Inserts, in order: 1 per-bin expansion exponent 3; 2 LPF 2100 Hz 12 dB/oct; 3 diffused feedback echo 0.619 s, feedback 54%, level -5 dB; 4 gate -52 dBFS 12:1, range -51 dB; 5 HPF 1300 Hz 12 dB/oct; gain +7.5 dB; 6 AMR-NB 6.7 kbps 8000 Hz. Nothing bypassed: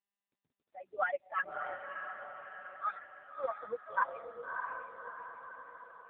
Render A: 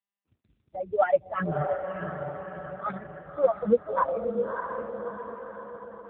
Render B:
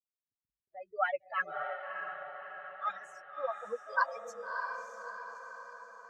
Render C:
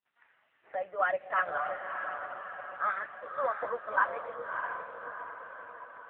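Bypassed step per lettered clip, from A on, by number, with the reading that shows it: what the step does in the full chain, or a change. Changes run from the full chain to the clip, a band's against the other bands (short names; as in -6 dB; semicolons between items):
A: 5, 250 Hz band +22.5 dB; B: 6, 250 Hz band -3.0 dB; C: 1, crest factor change -2.0 dB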